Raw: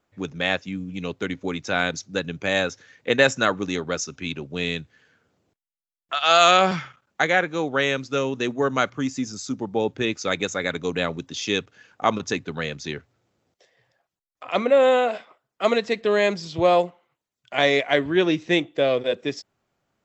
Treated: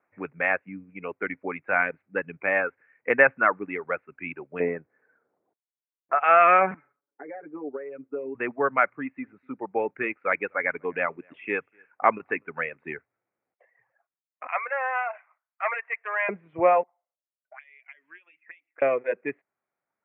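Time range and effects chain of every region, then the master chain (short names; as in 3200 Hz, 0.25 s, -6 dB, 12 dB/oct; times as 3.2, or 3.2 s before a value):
4.6–6.24 LPF 1500 Hz + bell 430 Hz +10.5 dB 2.3 oct
6.74–8.35 compressor 8:1, threshold -23 dBFS + band-pass 360 Hz, Q 2.4 + comb 7 ms, depth 98%
8.98–12.84 tone controls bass -3 dB, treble +6 dB + echo 0.249 s -22 dB
14.47–16.29 overloaded stage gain 14.5 dB + HPF 790 Hz 24 dB/oct
16.83–18.82 auto-wah 560–3300 Hz, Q 5.8, up, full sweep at -18.5 dBFS + compressor 12:1, threshold -43 dBFS + high shelf 2100 Hz +4.5 dB
whole clip: steep low-pass 2400 Hz 72 dB/oct; reverb removal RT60 1.4 s; HPF 760 Hz 6 dB/oct; gain +3.5 dB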